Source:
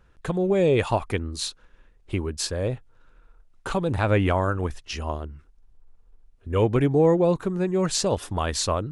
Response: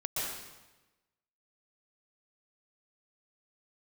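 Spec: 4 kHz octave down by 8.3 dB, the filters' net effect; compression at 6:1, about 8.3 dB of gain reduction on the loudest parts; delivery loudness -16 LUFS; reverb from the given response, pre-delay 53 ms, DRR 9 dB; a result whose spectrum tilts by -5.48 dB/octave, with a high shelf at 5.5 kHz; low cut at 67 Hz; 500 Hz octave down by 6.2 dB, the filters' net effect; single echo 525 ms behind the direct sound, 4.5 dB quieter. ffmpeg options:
-filter_complex "[0:a]highpass=67,equalizer=f=500:t=o:g=-7.5,equalizer=f=4000:t=o:g=-8.5,highshelf=f=5500:g=-4,acompressor=threshold=0.0398:ratio=6,aecho=1:1:525:0.596,asplit=2[s0][s1];[1:a]atrim=start_sample=2205,adelay=53[s2];[s1][s2]afir=irnorm=-1:irlink=0,volume=0.188[s3];[s0][s3]amix=inputs=2:normalize=0,volume=6.68"

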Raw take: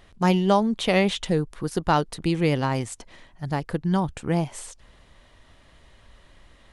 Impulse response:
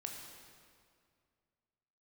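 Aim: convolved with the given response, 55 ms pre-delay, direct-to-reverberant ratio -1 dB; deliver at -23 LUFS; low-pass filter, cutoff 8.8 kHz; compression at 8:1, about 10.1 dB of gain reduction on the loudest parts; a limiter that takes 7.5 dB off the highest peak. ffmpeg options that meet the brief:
-filter_complex "[0:a]lowpass=8800,acompressor=threshold=0.0562:ratio=8,alimiter=limit=0.0794:level=0:latency=1,asplit=2[s0][s1];[1:a]atrim=start_sample=2205,adelay=55[s2];[s1][s2]afir=irnorm=-1:irlink=0,volume=1.41[s3];[s0][s3]amix=inputs=2:normalize=0,volume=2.24"

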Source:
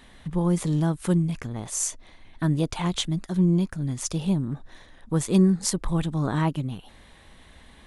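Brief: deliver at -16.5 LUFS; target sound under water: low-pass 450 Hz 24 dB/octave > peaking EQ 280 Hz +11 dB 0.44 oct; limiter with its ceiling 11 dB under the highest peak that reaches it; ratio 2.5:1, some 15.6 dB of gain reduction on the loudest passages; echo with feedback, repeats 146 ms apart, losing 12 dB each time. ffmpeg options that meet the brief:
-af "acompressor=threshold=0.0112:ratio=2.5,alimiter=level_in=1.68:limit=0.0631:level=0:latency=1,volume=0.596,lowpass=f=450:w=0.5412,lowpass=f=450:w=1.3066,equalizer=f=280:t=o:w=0.44:g=11,aecho=1:1:146|292|438:0.251|0.0628|0.0157,volume=10.6"

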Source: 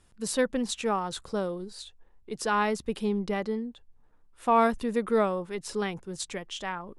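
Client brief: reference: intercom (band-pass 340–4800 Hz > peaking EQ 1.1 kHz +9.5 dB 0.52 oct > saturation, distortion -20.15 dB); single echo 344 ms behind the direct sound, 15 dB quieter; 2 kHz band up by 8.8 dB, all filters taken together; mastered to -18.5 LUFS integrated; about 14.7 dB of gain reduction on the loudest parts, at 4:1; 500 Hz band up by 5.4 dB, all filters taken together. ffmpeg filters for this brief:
-af "equalizer=f=500:t=o:g=6.5,equalizer=f=2000:t=o:g=9,acompressor=threshold=0.0251:ratio=4,highpass=340,lowpass=4800,equalizer=f=1100:t=o:w=0.52:g=9.5,aecho=1:1:344:0.178,asoftclip=threshold=0.0944,volume=7.08"

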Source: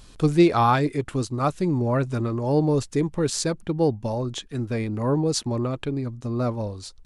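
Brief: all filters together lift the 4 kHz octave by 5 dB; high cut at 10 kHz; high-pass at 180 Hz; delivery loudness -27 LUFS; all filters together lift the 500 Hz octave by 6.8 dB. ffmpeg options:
-af "highpass=180,lowpass=10000,equalizer=f=500:t=o:g=8.5,equalizer=f=4000:t=o:g=6,volume=0.473"

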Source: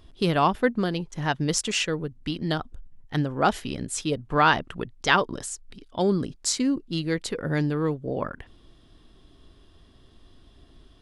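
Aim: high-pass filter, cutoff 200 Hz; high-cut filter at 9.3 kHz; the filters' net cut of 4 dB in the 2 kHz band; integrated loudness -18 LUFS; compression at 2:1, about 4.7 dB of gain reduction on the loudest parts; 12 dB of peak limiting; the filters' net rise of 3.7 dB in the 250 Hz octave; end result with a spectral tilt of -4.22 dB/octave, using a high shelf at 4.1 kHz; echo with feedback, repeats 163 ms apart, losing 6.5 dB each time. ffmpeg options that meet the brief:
-af "highpass=200,lowpass=9300,equalizer=f=250:t=o:g=7,equalizer=f=2000:t=o:g=-8,highshelf=f=4100:g=9,acompressor=threshold=0.0708:ratio=2,alimiter=limit=0.126:level=0:latency=1,aecho=1:1:163|326|489|652|815|978:0.473|0.222|0.105|0.0491|0.0231|0.0109,volume=3.35"

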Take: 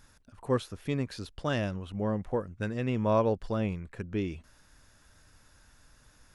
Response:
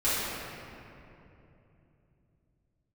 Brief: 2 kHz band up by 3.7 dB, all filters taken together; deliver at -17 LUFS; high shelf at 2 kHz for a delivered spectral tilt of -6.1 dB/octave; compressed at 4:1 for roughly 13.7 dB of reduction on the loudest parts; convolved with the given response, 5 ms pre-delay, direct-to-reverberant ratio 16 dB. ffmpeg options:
-filter_complex "[0:a]highshelf=f=2000:g=-3.5,equalizer=f=2000:t=o:g=7,acompressor=threshold=0.0126:ratio=4,asplit=2[s0][s1];[1:a]atrim=start_sample=2205,adelay=5[s2];[s1][s2]afir=irnorm=-1:irlink=0,volume=0.0355[s3];[s0][s3]amix=inputs=2:normalize=0,volume=17.8"

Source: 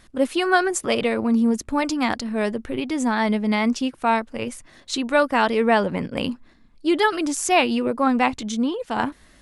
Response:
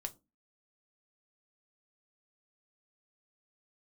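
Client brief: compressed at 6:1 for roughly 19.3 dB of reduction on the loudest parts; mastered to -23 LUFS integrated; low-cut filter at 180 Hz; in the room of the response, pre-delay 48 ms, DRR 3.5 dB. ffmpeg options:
-filter_complex "[0:a]highpass=180,acompressor=threshold=0.0178:ratio=6,asplit=2[s0][s1];[1:a]atrim=start_sample=2205,adelay=48[s2];[s1][s2]afir=irnorm=-1:irlink=0,volume=0.841[s3];[s0][s3]amix=inputs=2:normalize=0,volume=4.47"

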